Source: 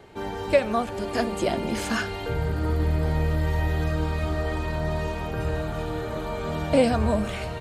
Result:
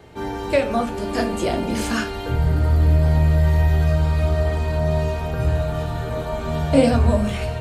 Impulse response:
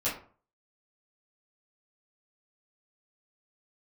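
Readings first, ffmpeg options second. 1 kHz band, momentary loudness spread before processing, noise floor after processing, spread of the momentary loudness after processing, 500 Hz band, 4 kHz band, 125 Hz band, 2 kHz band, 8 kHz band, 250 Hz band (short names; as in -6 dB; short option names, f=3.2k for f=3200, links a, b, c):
+2.5 dB, 8 LU, -29 dBFS, 9 LU, +3.0 dB, +3.0 dB, +8.5 dB, +2.0 dB, +4.0 dB, +5.0 dB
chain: -filter_complex "[0:a]asplit=2[a][b];[b]lowshelf=f=410:g=11[c];[1:a]atrim=start_sample=2205,highshelf=f=3.5k:g=11.5[d];[c][d]afir=irnorm=-1:irlink=0,volume=-14.5dB[e];[a][e]amix=inputs=2:normalize=0"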